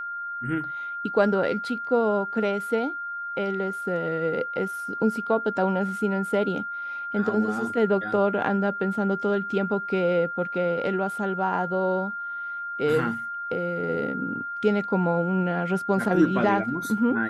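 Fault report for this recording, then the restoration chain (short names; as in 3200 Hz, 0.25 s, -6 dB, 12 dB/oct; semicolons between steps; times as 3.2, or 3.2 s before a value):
tone 1400 Hz -30 dBFS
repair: notch 1400 Hz, Q 30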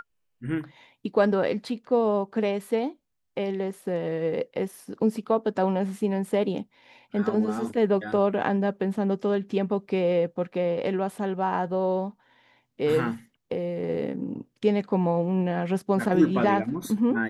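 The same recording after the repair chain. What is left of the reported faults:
none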